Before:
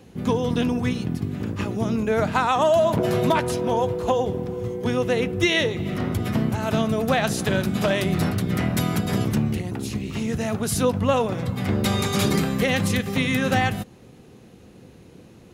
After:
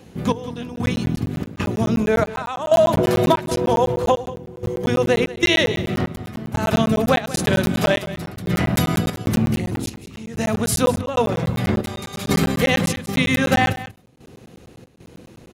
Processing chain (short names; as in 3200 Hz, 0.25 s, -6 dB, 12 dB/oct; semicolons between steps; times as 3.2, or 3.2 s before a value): notches 50/100/150/200/250/300/350/400/450 Hz; step gate "xx...xxxx.xx" 94 bpm -12 dB; echo 0.186 s -15.5 dB; crackling interface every 0.10 s, samples 512, zero, from 0.76; gain +4.5 dB